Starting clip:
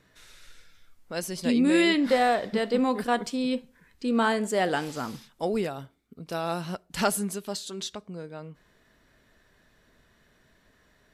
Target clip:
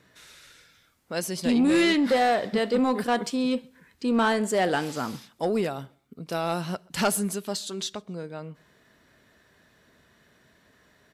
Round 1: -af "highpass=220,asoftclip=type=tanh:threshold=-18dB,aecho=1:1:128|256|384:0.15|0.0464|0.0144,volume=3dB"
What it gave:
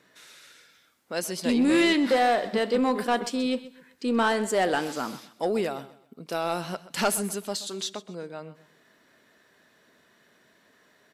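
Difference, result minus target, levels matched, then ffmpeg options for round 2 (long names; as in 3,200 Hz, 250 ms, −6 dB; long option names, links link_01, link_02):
echo-to-direct +12 dB; 125 Hz band −4.5 dB
-af "highpass=80,asoftclip=type=tanh:threshold=-18dB,aecho=1:1:128|256:0.0376|0.0117,volume=3dB"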